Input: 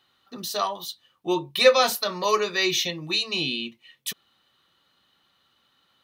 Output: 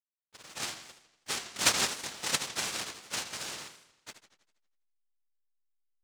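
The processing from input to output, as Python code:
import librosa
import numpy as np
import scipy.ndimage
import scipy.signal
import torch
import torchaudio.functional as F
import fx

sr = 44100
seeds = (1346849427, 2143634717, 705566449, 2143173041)

y = fx.lower_of_two(x, sr, delay_ms=1.1)
y = fx.noise_vocoder(y, sr, seeds[0], bands=1)
y = fx.backlash(y, sr, play_db=-38.5)
y = fx.power_curve(y, sr, exponent=1.4)
y = fx.echo_warbled(y, sr, ms=81, feedback_pct=53, rate_hz=2.8, cents=201, wet_db=-10.5)
y = y * 10.0 ** (-1.5 / 20.0)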